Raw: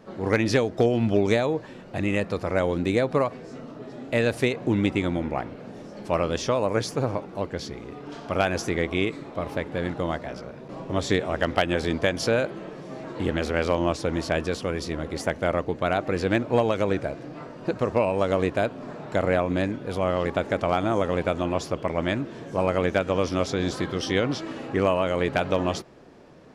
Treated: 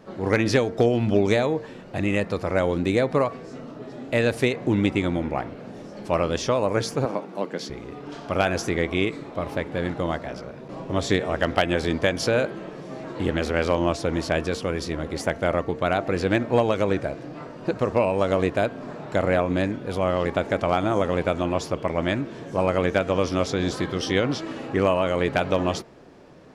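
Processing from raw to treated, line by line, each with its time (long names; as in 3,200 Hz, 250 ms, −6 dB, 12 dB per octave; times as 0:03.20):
0:07.05–0:07.70: Butterworth high-pass 160 Hz
whole clip: hum removal 227.2 Hz, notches 10; level +1.5 dB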